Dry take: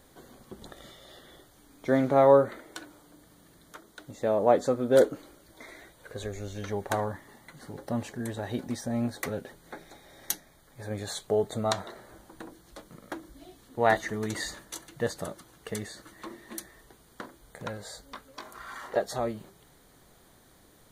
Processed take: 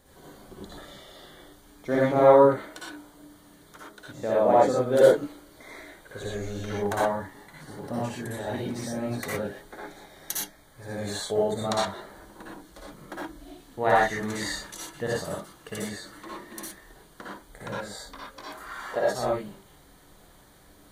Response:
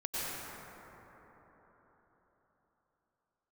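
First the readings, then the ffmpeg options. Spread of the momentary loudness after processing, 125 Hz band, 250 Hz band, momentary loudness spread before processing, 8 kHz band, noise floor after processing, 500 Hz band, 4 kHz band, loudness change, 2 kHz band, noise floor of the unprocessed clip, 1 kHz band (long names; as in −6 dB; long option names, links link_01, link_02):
24 LU, +1.5 dB, +1.5 dB, 23 LU, +2.5 dB, −55 dBFS, +3.0 dB, +3.5 dB, +3.0 dB, +4.0 dB, −59 dBFS, +4.5 dB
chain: -filter_complex "[1:a]atrim=start_sample=2205,afade=type=out:start_time=0.28:duration=0.01,atrim=end_sample=12789,asetrate=79380,aresample=44100[link_01];[0:a][link_01]afir=irnorm=-1:irlink=0,volume=6dB"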